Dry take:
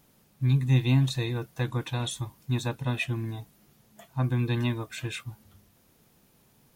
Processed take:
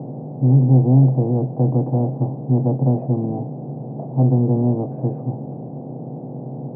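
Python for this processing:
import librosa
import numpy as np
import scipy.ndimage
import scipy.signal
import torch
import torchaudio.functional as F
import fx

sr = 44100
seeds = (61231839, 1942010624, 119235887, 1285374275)

y = fx.bin_compress(x, sr, power=0.4)
y = scipy.signal.sosfilt(scipy.signal.cheby1(4, 1.0, [130.0, 770.0], 'bandpass', fs=sr, output='sos'), y)
y = y * 10.0 ** (8.5 / 20.0)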